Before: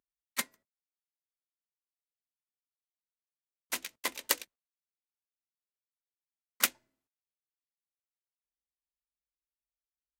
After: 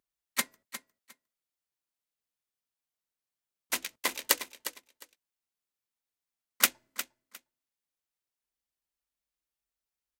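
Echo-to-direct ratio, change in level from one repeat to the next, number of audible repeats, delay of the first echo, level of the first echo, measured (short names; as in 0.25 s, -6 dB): -12.0 dB, -14.5 dB, 2, 0.356 s, -12.0 dB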